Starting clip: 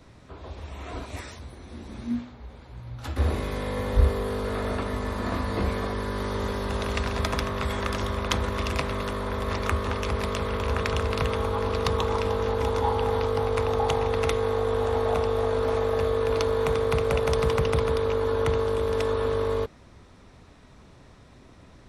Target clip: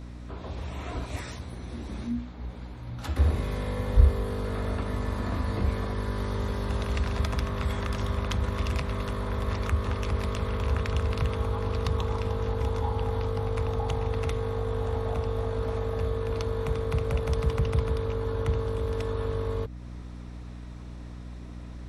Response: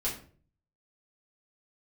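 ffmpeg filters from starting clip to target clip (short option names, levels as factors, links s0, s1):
-filter_complex "[0:a]acrossover=split=170[s0][s1];[s1]acompressor=threshold=0.0126:ratio=2.5[s2];[s0][s2]amix=inputs=2:normalize=0,aeval=exprs='val(0)+0.00891*(sin(2*PI*60*n/s)+sin(2*PI*2*60*n/s)/2+sin(2*PI*3*60*n/s)/3+sin(2*PI*4*60*n/s)/4+sin(2*PI*5*60*n/s)/5)':c=same,volume=1.26"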